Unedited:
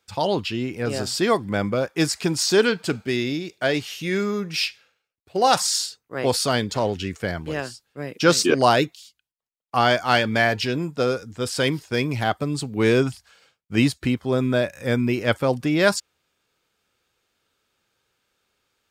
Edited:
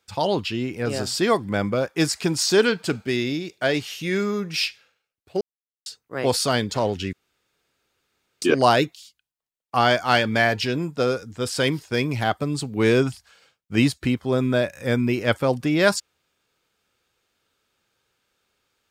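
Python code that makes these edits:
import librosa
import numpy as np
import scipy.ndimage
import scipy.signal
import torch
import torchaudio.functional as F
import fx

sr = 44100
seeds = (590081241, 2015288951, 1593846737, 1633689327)

y = fx.edit(x, sr, fx.silence(start_s=5.41, length_s=0.45),
    fx.room_tone_fill(start_s=7.13, length_s=1.29), tone=tone)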